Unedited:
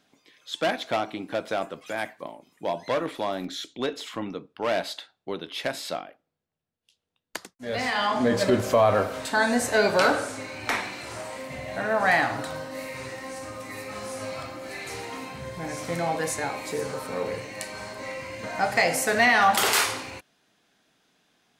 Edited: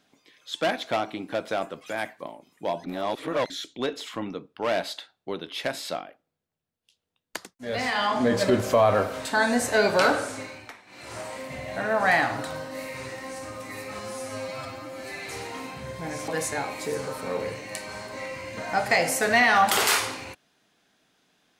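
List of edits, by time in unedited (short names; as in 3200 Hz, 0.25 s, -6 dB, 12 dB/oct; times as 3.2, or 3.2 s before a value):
2.84–3.5 reverse
10.41–11.18 dip -22 dB, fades 0.32 s
13.99–14.83 stretch 1.5×
15.86–16.14 cut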